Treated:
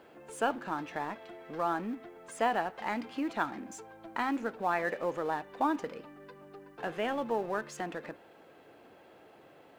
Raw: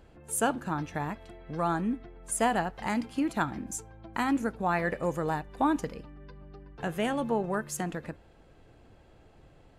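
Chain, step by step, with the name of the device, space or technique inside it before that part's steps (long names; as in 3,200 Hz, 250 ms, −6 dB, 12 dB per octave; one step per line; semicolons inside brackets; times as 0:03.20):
phone line with mismatched companding (band-pass filter 320–3,500 Hz; mu-law and A-law mismatch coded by mu)
level −2.5 dB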